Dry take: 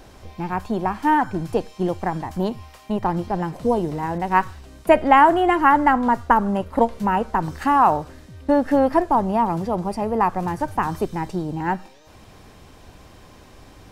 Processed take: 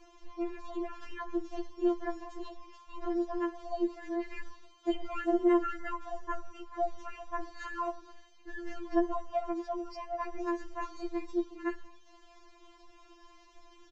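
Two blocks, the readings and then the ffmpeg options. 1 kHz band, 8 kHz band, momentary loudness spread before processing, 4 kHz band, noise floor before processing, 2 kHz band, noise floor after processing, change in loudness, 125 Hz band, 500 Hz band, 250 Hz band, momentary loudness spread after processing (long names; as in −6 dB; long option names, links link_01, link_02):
−20.5 dB, can't be measured, 11 LU, −13.5 dB, −47 dBFS, −17.5 dB, −59 dBFS, −15.0 dB, below −30 dB, −12.5 dB, −11.5 dB, 15 LU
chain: -filter_complex "[0:a]aresample=16000,aresample=44100,acrossover=split=360|3000[link_01][link_02][link_03];[link_02]acompressor=threshold=-22dB:ratio=6[link_04];[link_01][link_04][link_03]amix=inputs=3:normalize=0,asplit=4[link_05][link_06][link_07][link_08];[link_06]adelay=89,afreqshift=58,volume=-23.5dB[link_09];[link_07]adelay=178,afreqshift=116,volume=-29.3dB[link_10];[link_08]adelay=267,afreqshift=174,volume=-35.2dB[link_11];[link_05][link_09][link_10][link_11]amix=inputs=4:normalize=0,afftfilt=real='re*4*eq(mod(b,16),0)':imag='im*4*eq(mod(b,16),0)':win_size=2048:overlap=0.75,volume=-8.5dB"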